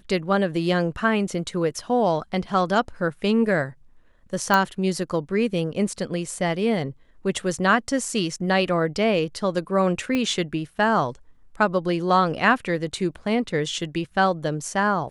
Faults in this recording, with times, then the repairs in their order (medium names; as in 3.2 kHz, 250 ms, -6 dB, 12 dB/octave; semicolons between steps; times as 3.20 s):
4.54 s: pop -6 dBFS
10.15 s: pop -12 dBFS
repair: de-click